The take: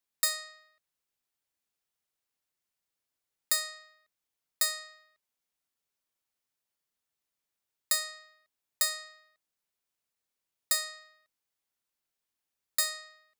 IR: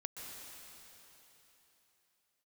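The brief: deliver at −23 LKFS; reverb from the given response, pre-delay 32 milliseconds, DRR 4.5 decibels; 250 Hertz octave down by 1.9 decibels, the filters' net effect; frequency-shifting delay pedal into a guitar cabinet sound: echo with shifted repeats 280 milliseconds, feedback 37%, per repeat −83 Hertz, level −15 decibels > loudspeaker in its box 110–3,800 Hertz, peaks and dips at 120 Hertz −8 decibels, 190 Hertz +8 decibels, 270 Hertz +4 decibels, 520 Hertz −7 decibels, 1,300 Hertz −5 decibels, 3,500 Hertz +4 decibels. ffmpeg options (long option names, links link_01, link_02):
-filter_complex "[0:a]equalizer=frequency=250:width_type=o:gain=-7,asplit=2[link_01][link_02];[1:a]atrim=start_sample=2205,adelay=32[link_03];[link_02][link_03]afir=irnorm=-1:irlink=0,volume=-3dB[link_04];[link_01][link_04]amix=inputs=2:normalize=0,asplit=4[link_05][link_06][link_07][link_08];[link_06]adelay=280,afreqshift=-83,volume=-15dB[link_09];[link_07]adelay=560,afreqshift=-166,volume=-23.6dB[link_10];[link_08]adelay=840,afreqshift=-249,volume=-32.3dB[link_11];[link_05][link_09][link_10][link_11]amix=inputs=4:normalize=0,highpass=110,equalizer=frequency=120:width_type=q:width=4:gain=-8,equalizer=frequency=190:width_type=q:width=4:gain=8,equalizer=frequency=270:width_type=q:width=4:gain=4,equalizer=frequency=520:width_type=q:width=4:gain=-7,equalizer=frequency=1300:width_type=q:width=4:gain=-5,equalizer=frequency=3500:width_type=q:width=4:gain=4,lowpass=frequency=3800:width=0.5412,lowpass=frequency=3800:width=1.3066,volume=17.5dB"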